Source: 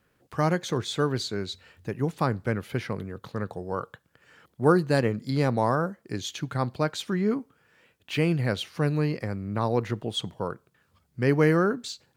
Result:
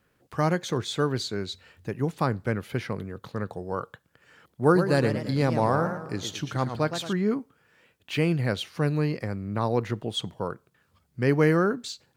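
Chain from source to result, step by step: 4.63–7.13 warbling echo 0.113 s, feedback 47%, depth 192 cents, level -8.5 dB

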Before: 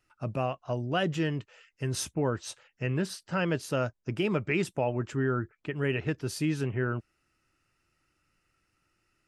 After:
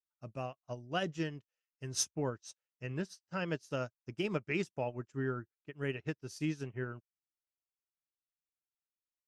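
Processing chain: bell 5900 Hz +10 dB 0.64 oct; upward expander 2.5:1, over -47 dBFS; gain -4 dB

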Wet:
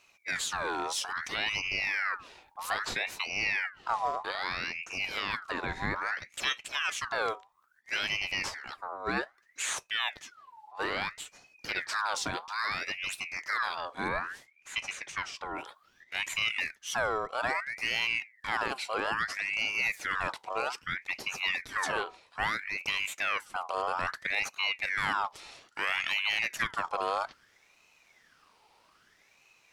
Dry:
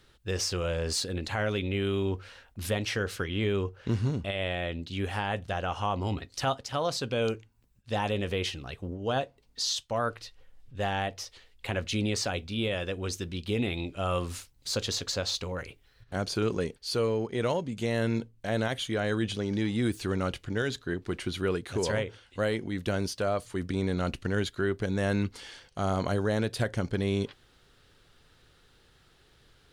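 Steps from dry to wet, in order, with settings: 14.08–15.55 LPF 1700 Hz 6 dB/oct; ring modulator with a swept carrier 1700 Hz, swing 50%, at 0.61 Hz

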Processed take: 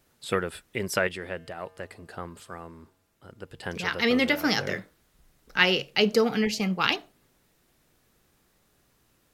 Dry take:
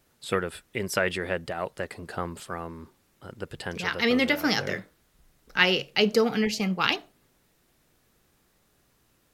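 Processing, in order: 1.07–3.63 resonator 93 Hz, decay 1.5 s, harmonics odd, mix 50%

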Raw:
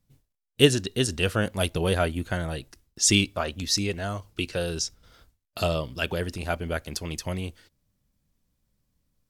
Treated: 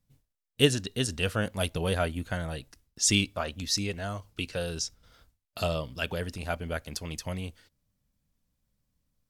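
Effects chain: bell 360 Hz -7 dB 0.24 oct; gain -3.5 dB

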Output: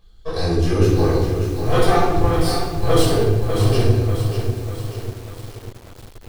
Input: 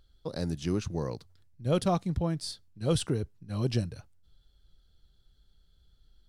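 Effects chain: minimum comb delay 2.5 ms; shoebox room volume 630 m³, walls mixed, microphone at 5.7 m; lo-fi delay 0.593 s, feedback 55%, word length 6-bit, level -7.5 dB; gain +1 dB

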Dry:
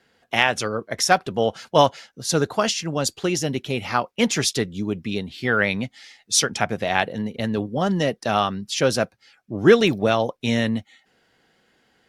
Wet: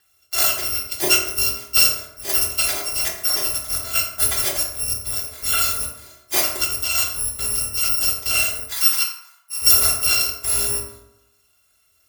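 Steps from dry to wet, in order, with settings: FFT order left unsorted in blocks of 256 samples; 8.68–9.62 steep high-pass 850 Hz 48 dB/oct; reverb RT60 0.90 s, pre-delay 3 ms, DRR -3 dB; maximiser -1.5 dB; gain -1 dB

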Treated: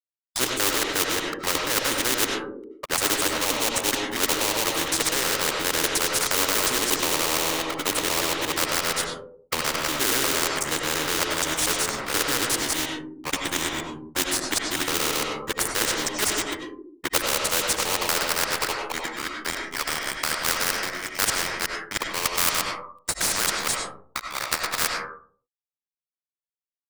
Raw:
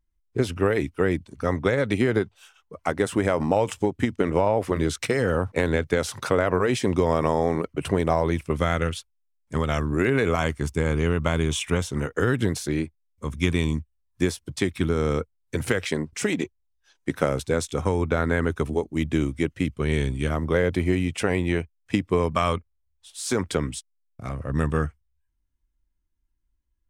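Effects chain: local time reversal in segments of 0.119 s; spectral noise reduction 17 dB; HPF 150 Hz 12 dB/oct; fixed phaser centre 710 Hz, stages 6; harmoniser -3 st -13 dB; high-pass sweep 290 Hz -> 1400 Hz, 16.01–19.81; in parallel at -7 dB: sample-rate reducer 3400 Hz, jitter 20%; on the sum: crossover distortion -45 dBFS; on a send at -3 dB: reverb RT60 0.50 s, pre-delay 55 ms; on the sum: spectral compressor 4:1

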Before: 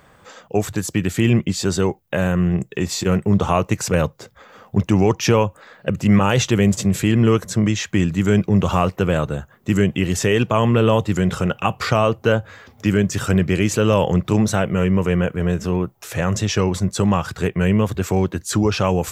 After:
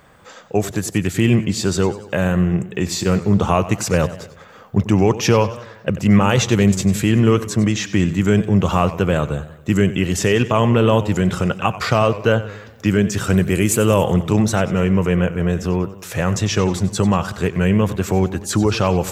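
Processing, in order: 13.37–14.04 resonant high shelf 7200 Hz +10.5 dB, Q 1.5; warbling echo 94 ms, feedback 51%, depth 119 cents, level -15 dB; gain +1 dB

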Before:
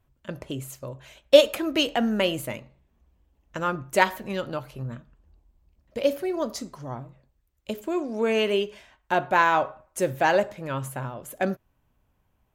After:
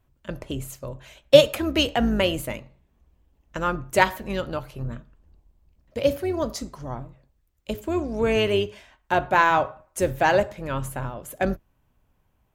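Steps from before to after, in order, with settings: octaver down 2 oct, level -5 dB; gain +1.5 dB

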